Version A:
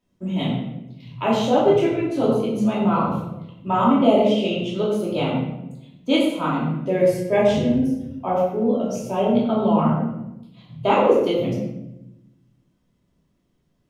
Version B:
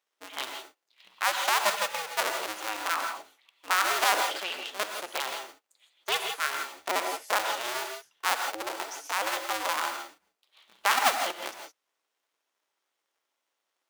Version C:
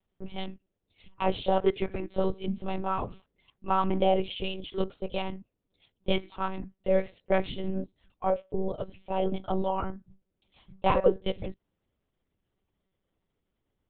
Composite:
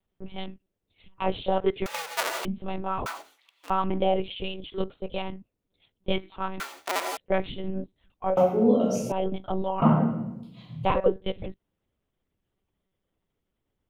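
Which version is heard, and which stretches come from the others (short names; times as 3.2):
C
1.86–2.45 from B
3.06–3.7 from B
6.6–7.17 from B
8.37–9.12 from A
9.82–10.85 from A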